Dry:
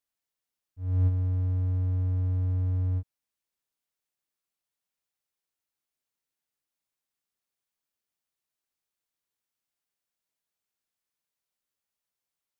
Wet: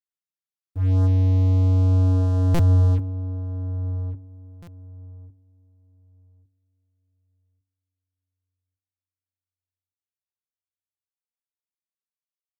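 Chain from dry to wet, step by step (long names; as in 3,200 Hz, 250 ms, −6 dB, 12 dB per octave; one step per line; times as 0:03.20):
source passing by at 0:02.66, 7 m/s, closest 7.9 metres
flat-topped bell 620 Hz −9.5 dB 1.2 octaves
leveller curve on the samples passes 5
in parallel at −6.5 dB: soft clipping −36 dBFS, distortion −14 dB
on the sum: feedback echo with a low-pass in the loop 1,155 ms, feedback 19%, low-pass 820 Hz, level −10 dB
on a send at −16 dB: convolution reverb RT60 0.35 s, pre-delay 3 ms
on the sum: buffer that repeats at 0:02.54/0:04.62, samples 256, times 8
level +2.5 dB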